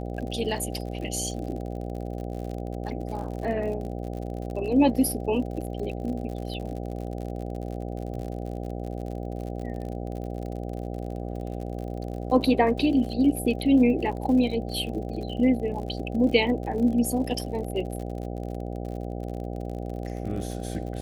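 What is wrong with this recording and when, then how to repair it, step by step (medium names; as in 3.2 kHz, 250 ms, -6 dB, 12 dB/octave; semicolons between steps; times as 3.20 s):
buzz 60 Hz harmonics 13 -33 dBFS
crackle 55 per s -35 dBFS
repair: de-click; de-hum 60 Hz, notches 13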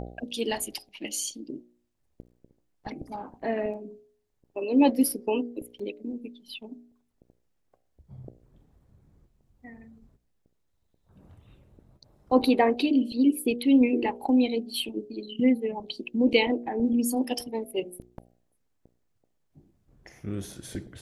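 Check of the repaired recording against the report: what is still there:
nothing left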